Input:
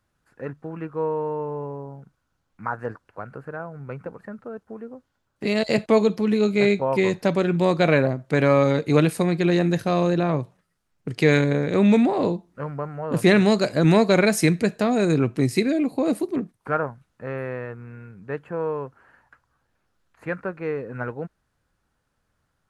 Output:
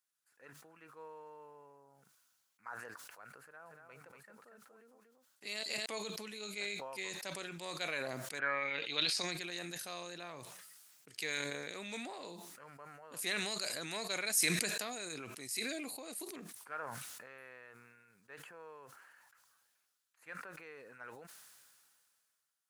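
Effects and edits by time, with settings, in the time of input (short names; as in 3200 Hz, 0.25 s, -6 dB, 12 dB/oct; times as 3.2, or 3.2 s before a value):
3.42–5.86 echo 0.236 s -5 dB
8.38–9.3 synth low-pass 1400 Hz -> 6200 Hz, resonance Q 6
whole clip: differentiator; sustainer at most 26 dB/s; gain -4 dB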